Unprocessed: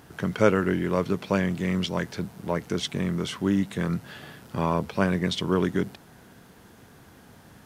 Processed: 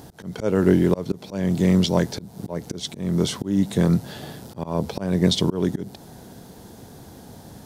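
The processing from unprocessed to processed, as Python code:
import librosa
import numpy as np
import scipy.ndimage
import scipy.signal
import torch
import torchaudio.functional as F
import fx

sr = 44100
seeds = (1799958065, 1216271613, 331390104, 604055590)

y = fx.auto_swell(x, sr, attack_ms=274.0)
y = fx.band_shelf(y, sr, hz=1800.0, db=-9.5, octaves=1.7)
y = F.gain(torch.from_numpy(y), 9.0).numpy()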